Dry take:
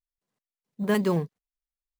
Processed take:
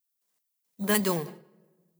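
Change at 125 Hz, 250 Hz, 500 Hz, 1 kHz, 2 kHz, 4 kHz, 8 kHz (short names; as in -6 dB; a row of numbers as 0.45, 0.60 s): -5.0, -3.5, -3.0, 0.0, +2.0, +5.5, +13.0 dB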